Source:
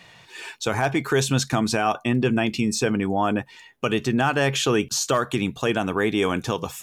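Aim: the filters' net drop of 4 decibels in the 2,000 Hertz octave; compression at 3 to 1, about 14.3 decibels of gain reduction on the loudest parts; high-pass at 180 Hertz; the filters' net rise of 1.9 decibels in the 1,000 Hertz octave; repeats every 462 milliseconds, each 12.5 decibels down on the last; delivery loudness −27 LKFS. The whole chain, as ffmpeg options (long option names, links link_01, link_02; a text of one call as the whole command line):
ffmpeg -i in.wav -af "highpass=180,equalizer=frequency=1000:width_type=o:gain=4.5,equalizer=frequency=2000:width_type=o:gain=-7.5,acompressor=threshold=-37dB:ratio=3,aecho=1:1:462|924|1386:0.237|0.0569|0.0137,volume=9.5dB" out.wav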